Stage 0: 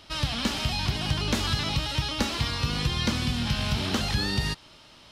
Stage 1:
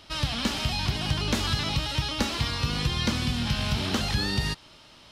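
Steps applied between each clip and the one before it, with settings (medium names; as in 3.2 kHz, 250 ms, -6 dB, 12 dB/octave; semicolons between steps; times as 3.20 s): no audible change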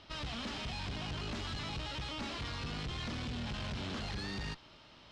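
valve stage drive 35 dB, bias 0.55; distance through air 120 m; trim -1.5 dB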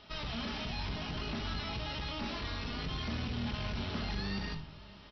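brick-wall FIR low-pass 5.9 kHz; echo from a far wall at 100 m, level -20 dB; simulated room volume 530 m³, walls furnished, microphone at 1.4 m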